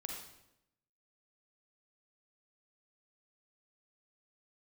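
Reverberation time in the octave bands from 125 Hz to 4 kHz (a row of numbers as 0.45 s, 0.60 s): 0.95 s, 1.0 s, 0.90 s, 0.80 s, 0.75 s, 0.70 s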